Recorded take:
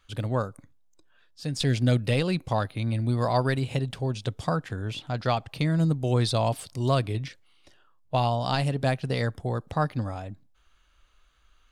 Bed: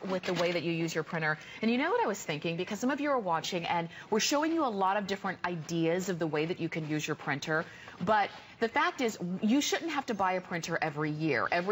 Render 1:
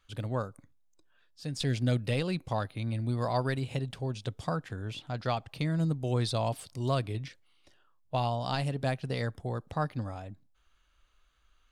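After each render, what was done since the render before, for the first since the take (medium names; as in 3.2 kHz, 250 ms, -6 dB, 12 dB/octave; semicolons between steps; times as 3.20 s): trim -5.5 dB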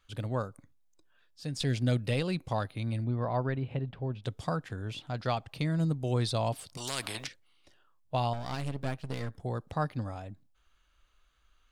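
3.04–4.24 s: distance through air 460 m; 6.77–7.27 s: spectrum-flattening compressor 4:1; 8.33–9.40 s: partial rectifier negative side -12 dB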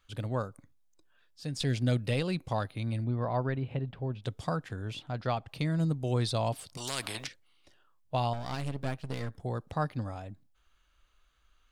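5.03–5.48 s: treble shelf 4 kHz -8.5 dB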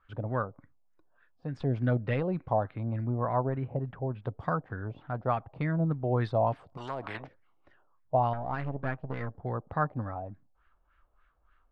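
LFO low-pass sine 3.4 Hz 680–1800 Hz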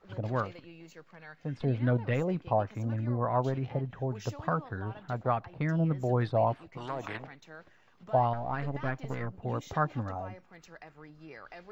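add bed -18.5 dB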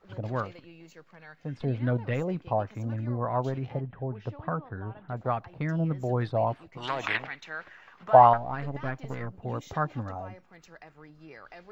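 3.80–5.17 s: distance through air 380 m; 6.82–8.36 s: peaking EQ 3.2 kHz -> 1.1 kHz +14.5 dB 2.7 oct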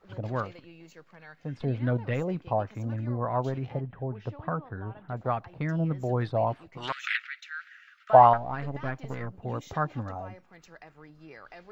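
6.92–8.10 s: steep high-pass 1.3 kHz 96 dB/octave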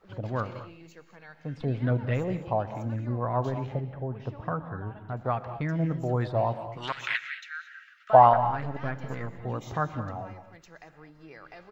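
feedback delay 123 ms, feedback 25%, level -21.5 dB; gated-style reverb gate 250 ms rising, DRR 11 dB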